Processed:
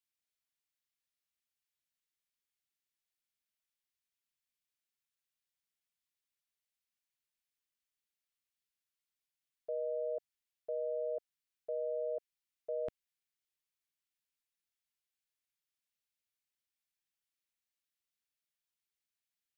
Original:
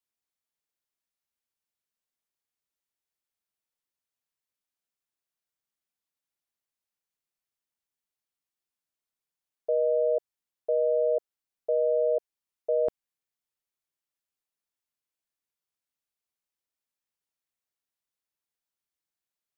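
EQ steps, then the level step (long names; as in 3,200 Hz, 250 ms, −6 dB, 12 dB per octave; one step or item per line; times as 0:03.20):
bass and treble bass −7 dB, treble −6 dB
parametric band 410 Hz −11.5 dB 1.6 octaves
parametric band 890 Hz −11.5 dB 1.6 octaves
+3.5 dB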